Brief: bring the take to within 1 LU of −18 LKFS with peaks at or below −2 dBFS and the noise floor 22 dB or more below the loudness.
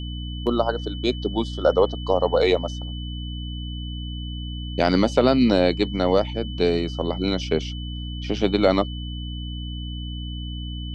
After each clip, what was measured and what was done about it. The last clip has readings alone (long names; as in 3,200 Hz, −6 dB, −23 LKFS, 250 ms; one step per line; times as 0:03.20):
mains hum 60 Hz; hum harmonics up to 300 Hz; level of the hum −29 dBFS; interfering tone 3,000 Hz; level of the tone −38 dBFS; integrated loudness −24.0 LKFS; sample peak −4.0 dBFS; target loudness −18.0 LKFS
→ hum removal 60 Hz, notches 5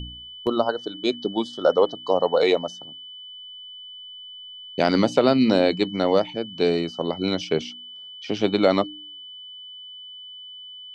mains hum none found; interfering tone 3,000 Hz; level of the tone −38 dBFS
→ notch filter 3,000 Hz, Q 30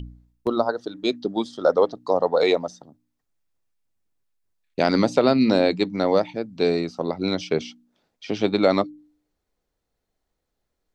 interfering tone none found; integrated loudness −22.5 LKFS; sample peak −4.5 dBFS; target loudness −18.0 LKFS
→ level +4.5 dB
brickwall limiter −2 dBFS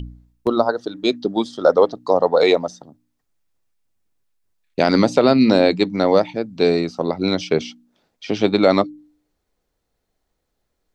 integrated loudness −18.0 LKFS; sample peak −2.0 dBFS; background noise floor −74 dBFS